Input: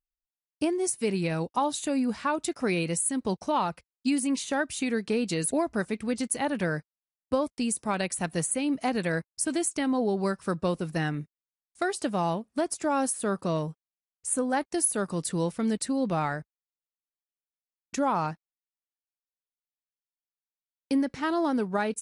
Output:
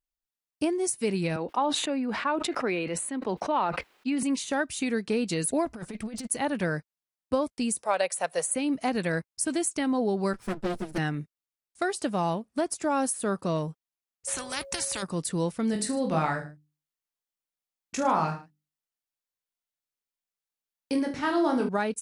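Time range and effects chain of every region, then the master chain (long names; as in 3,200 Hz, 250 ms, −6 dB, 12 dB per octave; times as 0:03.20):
0:01.36–0:04.23: three-way crossover with the lows and the highs turned down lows −16 dB, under 230 Hz, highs −19 dB, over 3,500 Hz + level that may fall only so fast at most 33 dB per second
0:05.65–0:06.27: compressor whose output falls as the input rises −32 dBFS, ratio −0.5 + tube saturation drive 27 dB, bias 0.3
0:07.83–0:08.56: high-pass filter 150 Hz 24 dB per octave + low shelf with overshoot 380 Hz −12.5 dB, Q 3
0:10.33–0:10.98: lower of the sound and its delayed copy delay 8.9 ms + notch filter 1,100 Hz, Q 8.3 + highs frequency-modulated by the lows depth 0.2 ms
0:14.27–0:15.02: steady tone 550 Hz −29 dBFS + every bin compressed towards the loudest bin 4 to 1
0:15.71–0:21.69: mains-hum notches 50/100/150/200/250/300/350/400 Hz + reverse bouncing-ball delay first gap 20 ms, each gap 1.2×, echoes 5
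whole clip: no processing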